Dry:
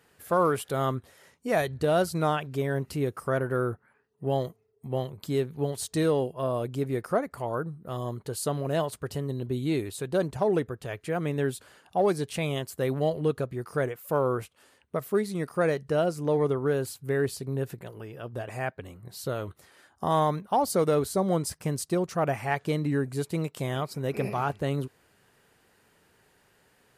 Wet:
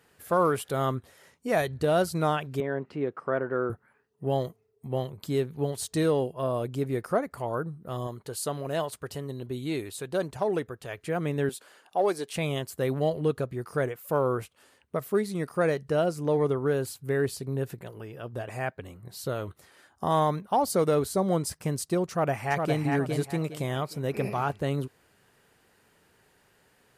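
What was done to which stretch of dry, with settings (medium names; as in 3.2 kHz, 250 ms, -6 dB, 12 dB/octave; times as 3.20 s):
2.60–3.70 s: band-pass 210–2200 Hz
8.07–10.98 s: bass shelf 400 Hz -6 dB
11.49–12.36 s: high-pass 330 Hz
22.09–22.82 s: echo throw 410 ms, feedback 30%, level -4 dB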